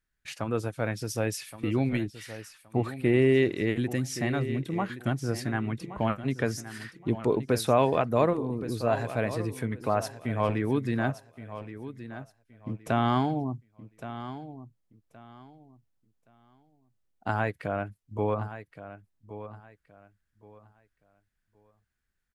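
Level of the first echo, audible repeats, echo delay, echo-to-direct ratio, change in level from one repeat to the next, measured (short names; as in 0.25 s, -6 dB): -13.0 dB, 2, 1.121 s, -12.5 dB, -12.0 dB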